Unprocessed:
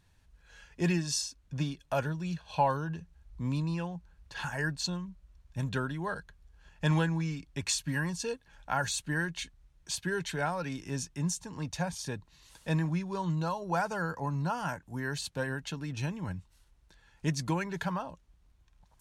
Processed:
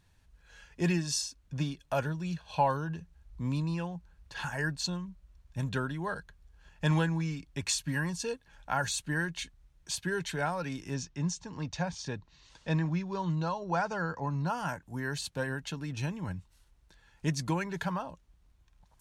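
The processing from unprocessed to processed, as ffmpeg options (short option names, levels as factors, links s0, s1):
-filter_complex "[0:a]asettb=1/sr,asplit=3[s0][s1][s2];[s0]atrim=end=10.944[s3];[s1]atrim=start=10.94:end=14.47,asetpts=PTS-STARTPTS,afade=t=in:d=0.004:c=qsin,afade=t=out:st=3.526:d=0.004:c=qsin,lowpass=f=6400:w=0.5412,lowpass=f=6400:w=1.3066[s4];[s2]atrim=start=14.466[s5];[s3][s4]acrossfade=d=0.004:c1=hsin:c2=qsin[s6];[s6][s5]acrossfade=d=0.004:c1=qsin:c2=hsin"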